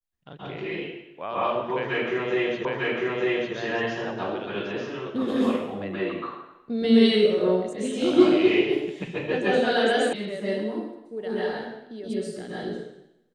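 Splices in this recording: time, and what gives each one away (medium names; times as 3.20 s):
2.65 s: repeat of the last 0.9 s
10.13 s: sound stops dead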